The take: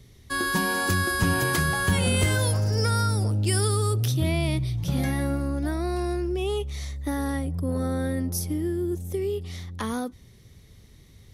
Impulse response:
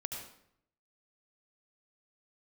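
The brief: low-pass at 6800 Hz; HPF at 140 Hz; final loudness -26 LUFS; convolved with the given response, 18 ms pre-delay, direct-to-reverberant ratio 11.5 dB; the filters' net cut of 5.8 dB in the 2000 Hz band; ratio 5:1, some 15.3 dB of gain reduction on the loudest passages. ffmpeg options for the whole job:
-filter_complex "[0:a]highpass=140,lowpass=6.8k,equalizer=f=2k:t=o:g=-7.5,acompressor=threshold=-40dB:ratio=5,asplit=2[a][b];[1:a]atrim=start_sample=2205,adelay=18[c];[b][c]afir=irnorm=-1:irlink=0,volume=-11.5dB[d];[a][d]amix=inputs=2:normalize=0,volume=15.5dB"

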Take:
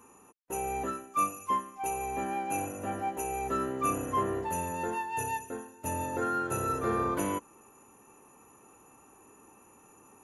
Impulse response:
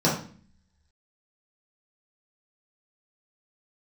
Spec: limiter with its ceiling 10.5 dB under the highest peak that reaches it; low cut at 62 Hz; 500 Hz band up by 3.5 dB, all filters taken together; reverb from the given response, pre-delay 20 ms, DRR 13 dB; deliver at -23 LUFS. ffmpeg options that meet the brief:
-filter_complex "[0:a]highpass=62,equalizer=f=500:t=o:g=4.5,alimiter=level_in=2dB:limit=-24dB:level=0:latency=1,volume=-2dB,asplit=2[a][b];[1:a]atrim=start_sample=2205,adelay=20[c];[b][c]afir=irnorm=-1:irlink=0,volume=-28.5dB[d];[a][d]amix=inputs=2:normalize=0,volume=11dB"

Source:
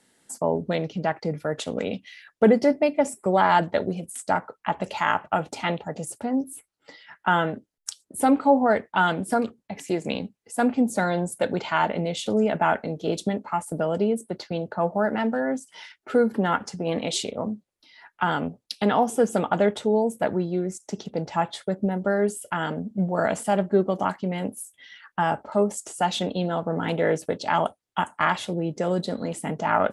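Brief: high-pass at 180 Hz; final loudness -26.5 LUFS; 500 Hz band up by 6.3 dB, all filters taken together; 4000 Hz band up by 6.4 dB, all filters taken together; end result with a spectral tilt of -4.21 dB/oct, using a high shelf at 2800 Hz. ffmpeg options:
-af "highpass=180,equalizer=f=500:t=o:g=7.5,highshelf=f=2.8k:g=4.5,equalizer=f=4k:t=o:g=4.5,volume=-5.5dB"

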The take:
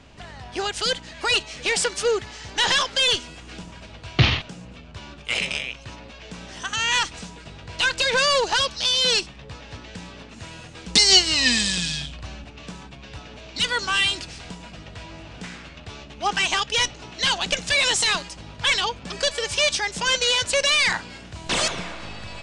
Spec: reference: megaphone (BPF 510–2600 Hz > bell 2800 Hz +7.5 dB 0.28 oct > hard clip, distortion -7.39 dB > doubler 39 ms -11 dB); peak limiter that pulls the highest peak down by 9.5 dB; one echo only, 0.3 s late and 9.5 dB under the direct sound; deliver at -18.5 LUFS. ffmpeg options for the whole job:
-filter_complex "[0:a]alimiter=limit=-14.5dB:level=0:latency=1,highpass=510,lowpass=2.6k,equalizer=f=2.8k:t=o:w=0.28:g=7.5,aecho=1:1:300:0.335,asoftclip=type=hard:threshold=-24.5dB,asplit=2[a][b];[b]adelay=39,volume=-11dB[c];[a][c]amix=inputs=2:normalize=0,volume=9dB"

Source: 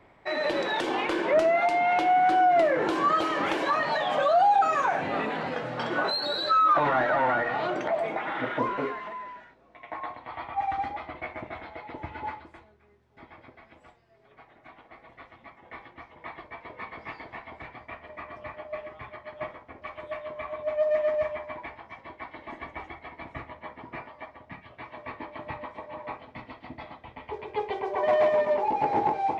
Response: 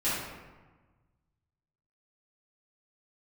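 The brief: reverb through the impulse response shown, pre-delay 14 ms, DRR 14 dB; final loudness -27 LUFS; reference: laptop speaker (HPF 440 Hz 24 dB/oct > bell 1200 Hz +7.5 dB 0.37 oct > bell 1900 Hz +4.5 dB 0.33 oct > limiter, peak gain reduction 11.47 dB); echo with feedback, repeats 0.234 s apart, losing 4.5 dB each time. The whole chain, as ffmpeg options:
-filter_complex "[0:a]aecho=1:1:234|468|702|936|1170|1404|1638|1872|2106:0.596|0.357|0.214|0.129|0.0772|0.0463|0.0278|0.0167|0.01,asplit=2[a][b];[1:a]atrim=start_sample=2205,adelay=14[c];[b][c]afir=irnorm=-1:irlink=0,volume=-24dB[d];[a][d]amix=inputs=2:normalize=0,highpass=f=440:w=0.5412,highpass=f=440:w=1.3066,equalizer=f=1.2k:t=o:w=0.37:g=7.5,equalizer=f=1.9k:t=o:w=0.33:g=4.5,volume=0.5dB,alimiter=limit=-16.5dB:level=0:latency=1"

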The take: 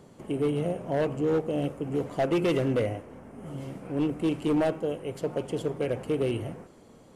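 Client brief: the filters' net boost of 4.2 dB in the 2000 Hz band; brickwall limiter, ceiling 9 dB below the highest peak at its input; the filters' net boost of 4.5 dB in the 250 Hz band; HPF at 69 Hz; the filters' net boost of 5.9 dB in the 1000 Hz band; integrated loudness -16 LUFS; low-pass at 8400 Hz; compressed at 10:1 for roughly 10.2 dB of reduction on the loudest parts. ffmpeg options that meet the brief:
-af "highpass=69,lowpass=8.4k,equalizer=f=250:t=o:g=5.5,equalizer=f=1k:t=o:g=7.5,equalizer=f=2k:t=o:g=3,acompressor=threshold=-28dB:ratio=10,volume=20.5dB,alimiter=limit=-6.5dB:level=0:latency=1"

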